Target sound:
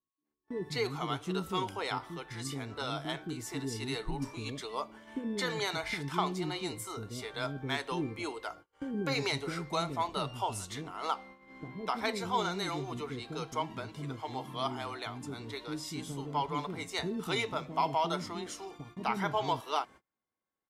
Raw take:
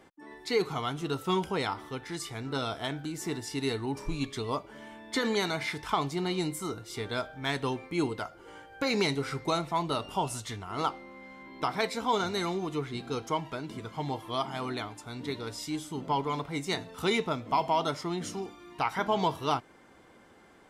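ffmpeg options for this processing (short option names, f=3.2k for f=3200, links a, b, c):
-filter_complex "[0:a]acrossover=split=380[a][b];[b]adelay=250[c];[a][c]amix=inputs=2:normalize=0,aeval=exprs='val(0)+0.000708*sin(2*PI*1100*n/s)':c=same,agate=range=-33dB:threshold=-47dB:ratio=16:detection=peak,volume=-2.5dB"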